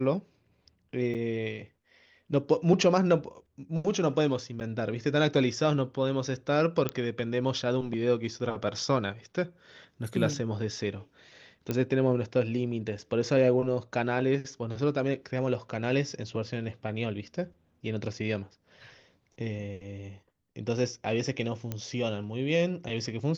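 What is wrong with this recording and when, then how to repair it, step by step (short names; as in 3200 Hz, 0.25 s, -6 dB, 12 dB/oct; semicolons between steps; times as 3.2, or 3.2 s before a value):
1.14–1.15 gap 7.5 ms
4.6–4.61 gap 9 ms
6.89 pop -14 dBFS
11.71 pop -16 dBFS
21.72 pop -19 dBFS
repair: de-click; interpolate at 1.14, 7.5 ms; interpolate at 4.6, 9 ms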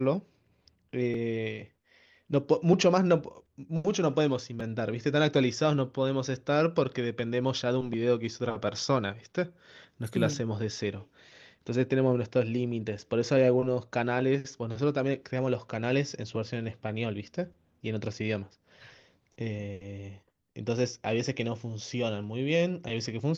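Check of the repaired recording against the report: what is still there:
none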